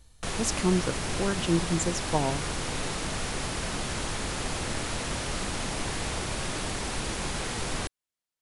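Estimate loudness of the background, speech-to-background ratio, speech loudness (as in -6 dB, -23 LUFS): -32.0 LUFS, 3.0 dB, -29.0 LUFS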